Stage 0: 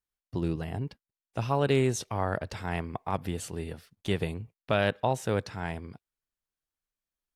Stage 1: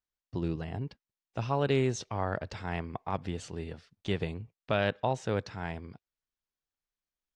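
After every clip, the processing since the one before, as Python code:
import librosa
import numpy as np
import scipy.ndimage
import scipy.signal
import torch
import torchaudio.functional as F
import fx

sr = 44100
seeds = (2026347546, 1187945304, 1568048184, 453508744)

y = scipy.signal.sosfilt(scipy.signal.butter(4, 6800.0, 'lowpass', fs=sr, output='sos'), x)
y = y * 10.0 ** (-2.5 / 20.0)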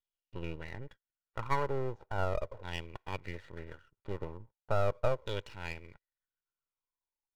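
y = fx.filter_lfo_lowpass(x, sr, shape='saw_down', hz=0.38, low_hz=520.0, high_hz=3400.0, q=6.4)
y = np.maximum(y, 0.0)
y = y + 0.5 * np.pad(y, (int(2.1 * sr / 1000.0), 0))[:len(y)]
y = y * 10.0 ** (-6.5 / 20.0)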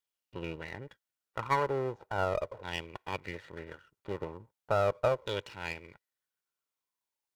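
y = fx.highpass(x, sr, hz=180.0, slope=6)
y = y * 10.0 ** (4.0 / 20.0)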